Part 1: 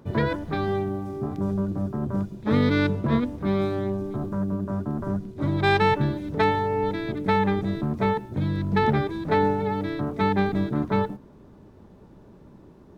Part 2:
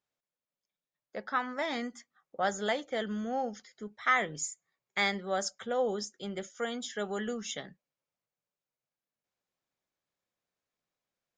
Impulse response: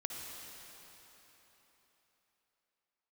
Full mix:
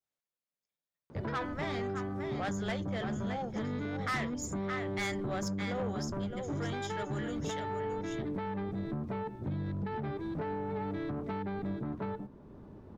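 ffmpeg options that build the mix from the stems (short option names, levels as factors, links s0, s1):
-filter_complex "[0:a]alimiter=limit=0.112:level=0:latency=1:release=476,acompressor=threshold=0.0355:ratio=6,highshelf=f=3600:g=-11,adelay=1100,volume=0.891[s0];[1:a]adynamicequalizer=threshold=0.01:dfrequency=1700:dqfactor=0.74:tfrequency=1700:tqfactor=0.74:attack=5:release=100:ratio=0.375:range=2:mode=boostabove:tftype=bell,volume=0.562,asplit=2[s1][s2];[s2]volume=0.398,aecho=0:1:615:1[s3];[s0][s1][s3]amix=inputs=3:normalize=0,asoftclip=type=tanh:threshold=0.0355"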